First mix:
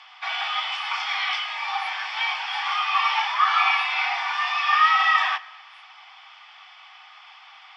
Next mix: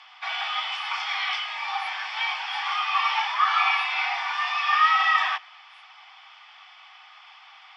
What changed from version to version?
background: send −11.5 dB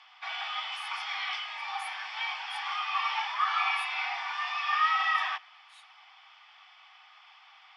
speech +12.0 dB
background −6.5 dB

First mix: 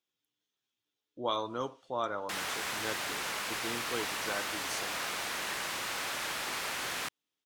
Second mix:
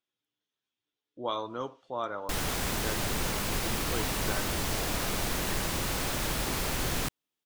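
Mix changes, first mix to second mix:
background: remove resonant band-pass 1,700 Hz, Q 0.72
master: add high-shelf EQ 6,800 Hz −11.5 dB

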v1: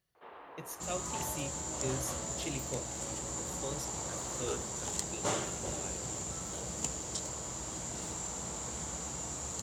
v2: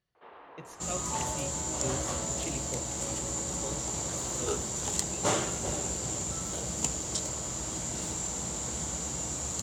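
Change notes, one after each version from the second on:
speech: add high-frequency loss of the air 75 metres
second sound +5.5 dB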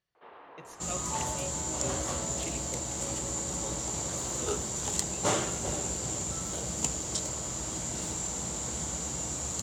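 speech: add low-shelf EQ 420 Hz −6.5 dB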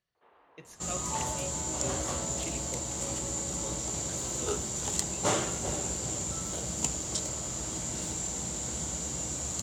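first sound −11.5 dB

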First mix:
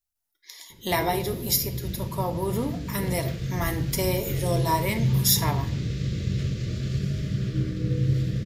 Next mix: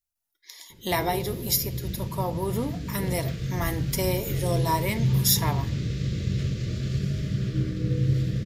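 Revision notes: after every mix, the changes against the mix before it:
speech: send −6.0 dB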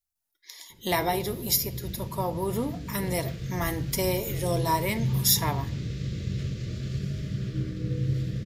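background −4.0 dB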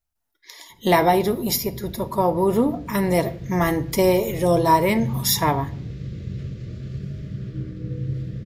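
speech +11.0 dB
master: add high-shelf EQ 2,400 Hz −11.5 dB

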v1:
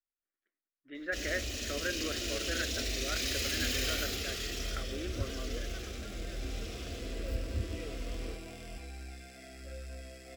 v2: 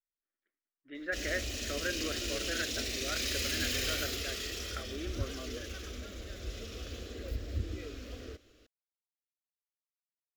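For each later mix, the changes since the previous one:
second sound: muted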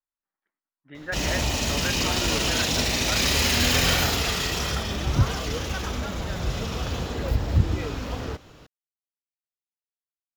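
background +10.5 dB
master: remove phaser with its sweep stopped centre 370 Hz, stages 4

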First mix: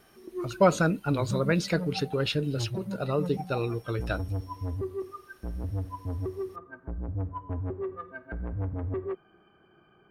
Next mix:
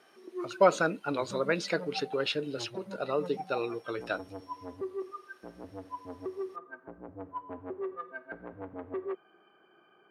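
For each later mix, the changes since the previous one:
speech: add high-frequency loss of the air 52 metres
master: add high-pass filter 350 Hz 12 dB per octave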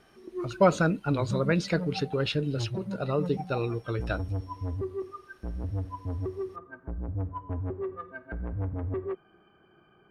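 master: remove high-pass filter 350 Hz 12 dB per octave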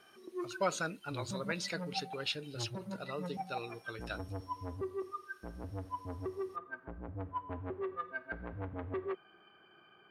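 speech −9.5 dB
master: add spectral tilt +3.5 dB per octave

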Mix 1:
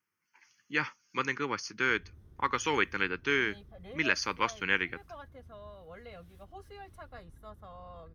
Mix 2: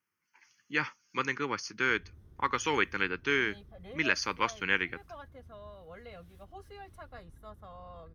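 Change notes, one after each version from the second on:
nothing changed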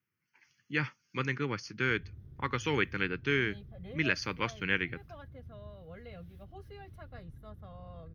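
master: add octave-band graphic EQ 125/1,000/8,000 Hz +11/−7/−11 dB

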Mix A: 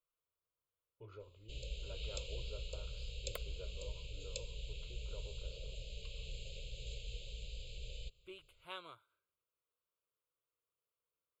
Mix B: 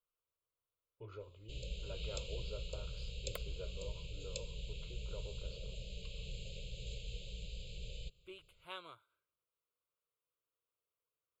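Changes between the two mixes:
speech +3.5 dB
first sound: add parametric band 190 Hz +9.5 dB 1.1 octaves

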